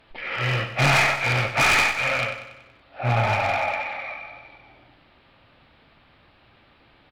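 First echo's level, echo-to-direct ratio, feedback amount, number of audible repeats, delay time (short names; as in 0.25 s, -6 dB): -10.5 dB, -9.0 dB, 53%, 5, 94 ms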